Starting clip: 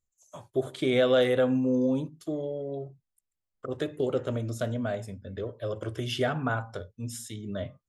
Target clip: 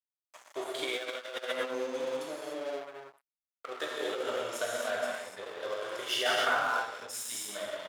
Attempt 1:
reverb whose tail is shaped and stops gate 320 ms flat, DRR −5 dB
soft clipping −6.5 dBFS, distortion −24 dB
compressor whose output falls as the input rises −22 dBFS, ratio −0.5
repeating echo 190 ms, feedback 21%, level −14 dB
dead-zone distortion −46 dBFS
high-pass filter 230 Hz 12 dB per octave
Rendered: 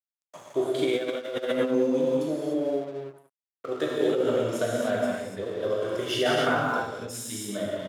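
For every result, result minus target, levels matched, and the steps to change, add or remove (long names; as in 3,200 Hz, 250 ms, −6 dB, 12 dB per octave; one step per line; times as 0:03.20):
250 Hz band +10.5 dB; dead-zone distortion: distortion −7 dB
change: high-pass filter 810 Hz 12 dB per octave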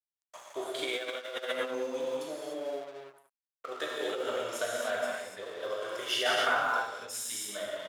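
dead-zone distortion: distortion −7 dB
change: dead-zone distortion −39 dBFS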